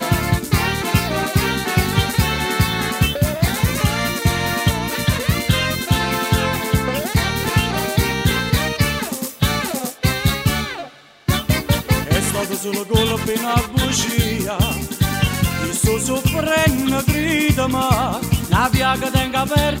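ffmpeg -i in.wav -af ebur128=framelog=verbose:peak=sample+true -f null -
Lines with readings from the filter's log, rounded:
Integrated loudness:
  I:         -18.5 LUFS
  Threshold: -28.5 LUFS
Loudness range:
  LRA:         2.5 LU
  Threshold: -38.6 LUFS
  LRA low:   -19.9 LUFS
  LRA high:  -17.3 LUFS
Sample peak:
  Peak:       -3.7 dBFS
True peak:
  Peak:       -3.5 dBFS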